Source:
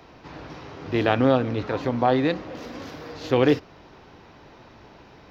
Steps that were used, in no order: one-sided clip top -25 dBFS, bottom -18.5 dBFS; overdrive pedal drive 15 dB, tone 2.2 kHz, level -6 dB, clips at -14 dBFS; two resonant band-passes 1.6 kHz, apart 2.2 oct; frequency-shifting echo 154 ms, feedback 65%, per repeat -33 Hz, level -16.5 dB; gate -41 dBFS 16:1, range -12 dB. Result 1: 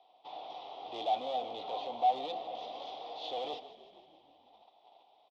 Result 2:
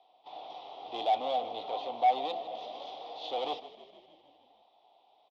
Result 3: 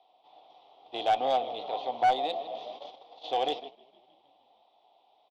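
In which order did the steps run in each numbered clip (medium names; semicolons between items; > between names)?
overdrive pedal > one-sided clip > gate > two resonant band-passes > frequency-shifting echo; one-sided clip > gate > two resonant band-passes > frequency-shifting echo > overdrive pedal; two resonant band-passes > frequency-shifting echo > one-sided clip > overdrive pedal > gate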